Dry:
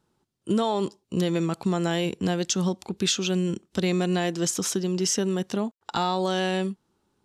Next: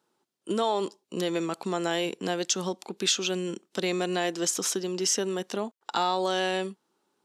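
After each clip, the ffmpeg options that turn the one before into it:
-af "highpass=330"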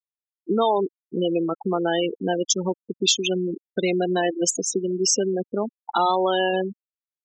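-filter_complex "[0:a]asplit=5[s0][s1][s2][s3][s4];[s1]adelay=317,afreqshift=130,volume=0.126[s5];[s2]adelay=634,afreqshift=260,volume=0.0569[s6];[s3]adelay=951,afreqshift=390,volume=0.0254[s7];[s4]adelay=1268,afreqshift=520,volume=0.0115[s8];[s0][s5][s6][s7][s8]amix=inputs=5:normalize=0,afftfilt=real='re*gte(hypot(re,im),0.0794)':imag='im*gte(hypot(re,im),0.0794)':win_size=1024:overlap=0.75,volume=2.11"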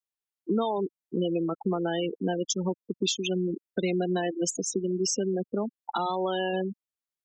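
-filter_complex "[0:a]acrossover=split=240[s0][s1];[s1]acompressor=threshold=0.0224:ratio=2[s2];[s0][s2]amix=inputs=2:normalize=0"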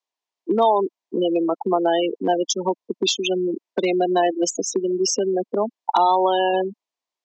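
-af "asoftclip=type=hard:threshold=0.119,highpass=f=250:w=0.5412,highpass=f=250:w=1.3066,equalizer=f=680:t=q:w=4:g=6,equalizer=f=980:t=q:w=4:g=9,equalizer=f=1400:t=q:w=4:g=-7,lowpass=f=6700:w=0.5412,lowpass=f=6700:w=1.3066,volume=2.37"

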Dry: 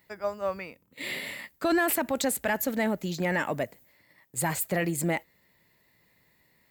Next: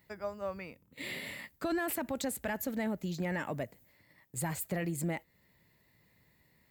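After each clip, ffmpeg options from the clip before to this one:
-af "equalizer=f=69:w=0.33:g=8,acompressor=threshold=0.0141:ratio=1.5,volume=0.631"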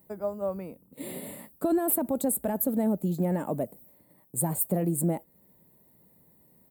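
-af "firequalizer=gain_entry='entry(110,0);entry(180,9);entry(680,7);entry(1900,-12);entry(3700,-7);entry(5800,-12);entry(8700,12)':delay=0.05:min_phase=1"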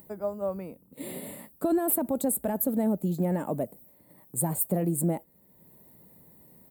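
-af "acompressor=mode=upward:threshold=0.00447:ratio=2.5"

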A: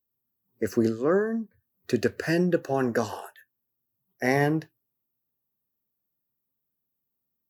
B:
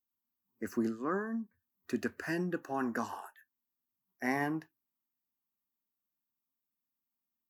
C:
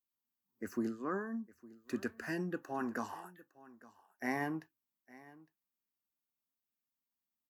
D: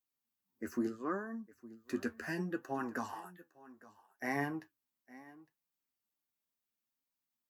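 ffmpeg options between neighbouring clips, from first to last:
-af "equalizer=f=125:t=o:w=1:g=-11,equalizer=f=250:t=o:w=1:g=6,equalizer=f=500:t=o:w=1:g=-11,equalizer=f=1000:t=o:w=1:g=8,equalizer=f=4000:t=o:w=1:g=-6,volume=0.398"
-af "aecho=1:1:859:0.0944,volume=0.668"
-af "flanger=delay=6:depth=7:regen=37:speed=0.7:shape=triangular,volume=1.68"

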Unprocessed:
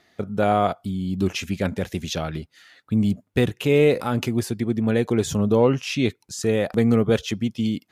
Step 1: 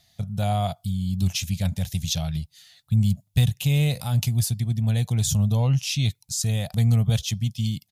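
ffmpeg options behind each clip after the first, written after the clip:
-af "firequalizer=gain_entry='entry(140,0);entry(250,-20);entry(380,-30);entry(680,-12);entry(1300,-21);entry(3600,-3);entry(12000,3)':delay=0.05:min_phase=1,volume=2.11"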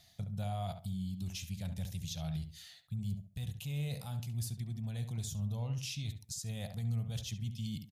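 -filter_complex "[0:a]areverse,acompressor=threshold=0.0355:ratio=10,areverse,alimiter=level_in=1.88:limit=0.0631:level=0:latency=1:release=238,volume=0.531,asplit=2[s0][s1];[s1]adelay=69,lowpass=f=2200:p=1,volume=0.398,asplit=2[s2][s3];[s3]adelay=69,lowpass=f=2200:p=1,volume=0.27,asplit=2[s4][s5];[s5]adelay=69,lowpass=f=2200:p=1,volume=0.27[s6];[s0][s2][s4][s6]amix=inputs=4:normalize=0,volume=0.841"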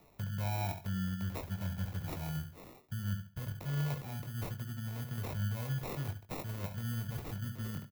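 -filter_complex "[0:a]acrusher=samples=28:mix=1:aa=0.000001,acrossover=split=390|650|2900[s0][s1][s2][s3];[s3]aexciter=amount=4.4:drive=2.4:freq=12000[s4];[s0][s1][s2][s4]amix=inputs=4:normalize=0,asplit=2[s5][s6];[s6]adelay=21,volume=0.422[s7];[s5][s7]amix=inputs=2:normalize=0"

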